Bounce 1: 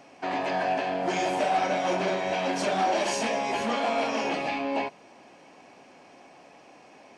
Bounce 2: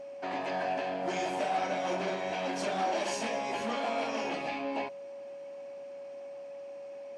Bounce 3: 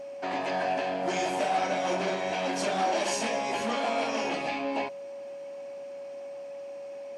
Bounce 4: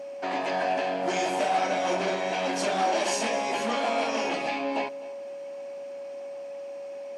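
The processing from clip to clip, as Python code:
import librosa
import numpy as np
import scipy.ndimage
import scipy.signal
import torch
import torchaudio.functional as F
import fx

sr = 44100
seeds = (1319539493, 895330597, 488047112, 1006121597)

y1 = scipy.signal.sosfilt(scipy.signal.butter(2, 68.0, 'highpass', fs=sr, output='sos'), x)
y1 = y1 + 10.0 ** (-35.0 / 20.0) * np.sin(2.0 * np.pi * 560.0 * np.arange(len(y1)) / sr)
y1 = y1 * librosa.db_to_amplitude(-6.0)
y2 = fx.high_shelf(y1, sr, hz=6400.0, db=6.0)
y2 = y2 * librosa.db_to_amplitude(3.5)
y3 = scipy.signal.sosfilt(scipy.signal.butter(2, 170.0, 'highpass', fs=sr, output='sos'), y2)
y3 = y3 + 10.0 ** (-20.5 / 20.0) * np.pad(y3, (int(255 * sr / 1000.0), 0))[:len(y3)]
y3 = y3 * librosa.db_to_amplitude(2.0)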